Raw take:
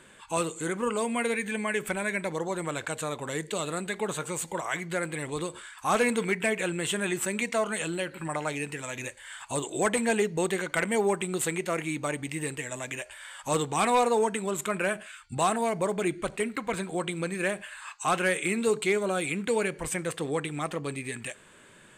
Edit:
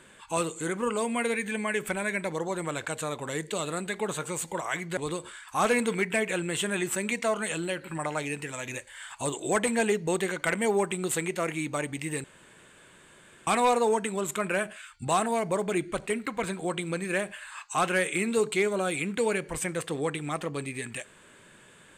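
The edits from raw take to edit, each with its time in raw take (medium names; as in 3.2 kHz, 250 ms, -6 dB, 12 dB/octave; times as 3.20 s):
4.97–5.27 s: delete
12.54–13.77 s: room tone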